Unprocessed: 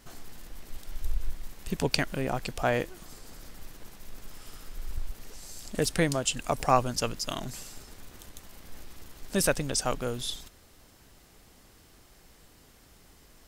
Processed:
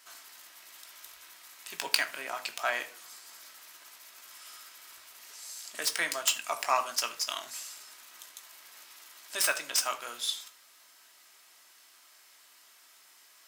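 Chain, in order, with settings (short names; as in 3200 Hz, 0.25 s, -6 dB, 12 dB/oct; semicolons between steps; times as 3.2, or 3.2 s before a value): tracing distortion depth 0.076 ms; HPF 1200 Hz 12 dB/oct; on a send: reverb RT60 0.40 s, pre-delay 3 ms, DRR 4 dB; on the sum: gain +1.5 dB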